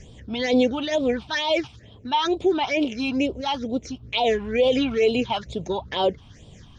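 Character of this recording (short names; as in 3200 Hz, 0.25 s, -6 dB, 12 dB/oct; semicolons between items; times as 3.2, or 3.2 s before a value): phasing stages 6, 2.2 Hz, lowest notch 470–1800 Hz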